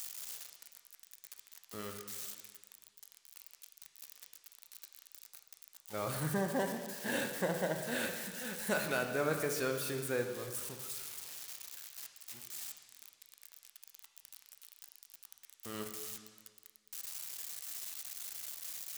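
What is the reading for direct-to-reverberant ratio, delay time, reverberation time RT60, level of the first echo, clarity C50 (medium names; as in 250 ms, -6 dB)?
4.0 dB, no echo, 1.6 s, no echo, 6.5 dB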